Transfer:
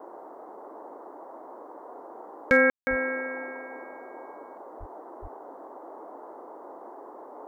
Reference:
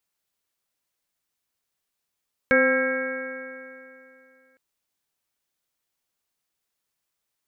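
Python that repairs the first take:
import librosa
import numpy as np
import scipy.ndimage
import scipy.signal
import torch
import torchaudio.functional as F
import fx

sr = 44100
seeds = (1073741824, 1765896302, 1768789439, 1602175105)

y = fx.fix_declip(x, sr, threshold_db=-10.0)
y = fx.highpass(y, sr, hz=140.0, slope=24, at=(2.89, 3.01), fade=0.02)
y = fx.highpass(y, sr, hz=140.0, slope=24, at=(4.79, 4.91), fade=0.02)
y = fx.highpass(y, sr, hz=140.0, slope=24, at=(5.21, 5.33), fade=0.02)
y = fx.fix_ambience(y, sr, seeds[0], print_start_s=0.08, print_end_s=0.58, start_s=2.7, end_s=2.87)
y = fx.noise_reduce(y, sr, print_start_s=0.08, print_end_s=0.58, reduce_db=30.0)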